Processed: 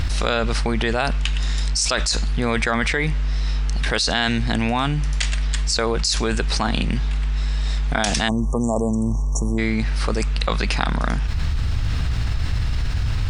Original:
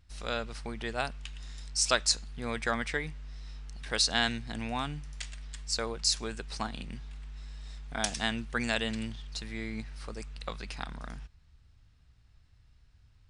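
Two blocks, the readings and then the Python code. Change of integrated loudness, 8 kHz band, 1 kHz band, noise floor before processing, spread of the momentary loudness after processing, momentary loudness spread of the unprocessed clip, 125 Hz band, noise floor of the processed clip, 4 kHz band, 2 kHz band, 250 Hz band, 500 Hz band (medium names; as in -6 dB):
+11.0 dB, +7.0 dB, +11.5 dB, -61 dBFS, 5 LU, 18 LU, +19.5 dB, -22 dBFS, +8.5 dB, +10.5 dB, +15.0 dB, +12.5 dB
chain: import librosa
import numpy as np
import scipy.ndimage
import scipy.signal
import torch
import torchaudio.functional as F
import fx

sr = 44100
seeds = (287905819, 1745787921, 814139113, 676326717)

y = fx.high_shelf(x, sr, hz=7200.0, db=-7.0)
y = fx.spec_erase(y, sr, start_s=8.28, length_s=1.3, low_hz=1200.0, high_hz=5500.0)
y = fx.env_flatten(y, sr, amount_pct=100)
y = F.gain(torch.from_numpy(y), 2.5).numpy()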